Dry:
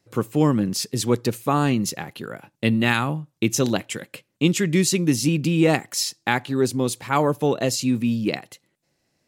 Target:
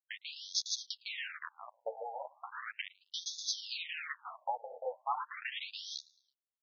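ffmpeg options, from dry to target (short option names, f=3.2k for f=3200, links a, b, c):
-filter_complex "[0:a]aresample=16000,acrusher=bits=3:mix=0:aa=0.000001,aresample=44100,lowshelf=f=140:g=7.5,agate=range=-33dB:threshold=-31dB:ratio=3:detection=peak,acompressor=threshold=-21dB:ratio=12,atempo=1.4,asubboost=boost=7:cutoff=230,asplit=2[a][b];[b]aecho=0:1:109|218|327:0.0668|0.0301|0.0135[c];[a][c]amix=inputs=2:normalize=0,flanger=delay=8.3:depth=4.7:regen=-5:speed=1.1:shape=triangular,afftfilt=real='re*between(b*sr/1024,620*pow(4800/620,0.5+0.5*sin(2*PI*0.37*pts/sr))/1.41,620*pow(4800/620,0.5+0.5*sin(2*PI*0.37*pts/sr))*1.41)':imag='im*between(b*sr/1024,620*pow(4800/620,0.5+0.5*sin(2*PI*0.37*pts/sr))/1.41,620*pow(4800/620,0.5+0.5*sin(2*PI*0.37*pts/sr))*1.41)':win_size=1024:overlap=0.75,volume=1.5dB"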